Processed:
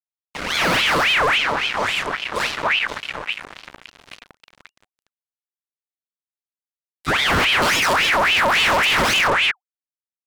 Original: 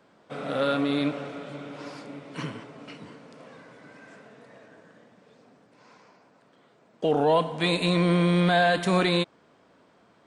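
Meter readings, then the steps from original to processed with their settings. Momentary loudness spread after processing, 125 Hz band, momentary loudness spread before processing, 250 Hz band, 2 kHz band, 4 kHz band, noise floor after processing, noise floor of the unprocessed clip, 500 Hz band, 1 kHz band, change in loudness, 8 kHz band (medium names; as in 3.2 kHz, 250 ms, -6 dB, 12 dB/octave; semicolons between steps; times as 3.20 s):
13 LU, -4.5 dB, 20 LU, -4.5 dB, +14.5 dB, +13.5 dB, under -85 dBFS, -61 dBFS, +0.5 dB, +9.5 dB, +7.5 dB, +17.5 dB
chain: bass shelf 250 Hz +11 dB; three bands offset in time highs, mids, lows 40/270 ms, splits 530/2800 Hz; fuzz box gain 34 dB, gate -41 dBFS; ring modulator with a swept carrier 1.8 kHz, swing 60%, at 3.6 Hz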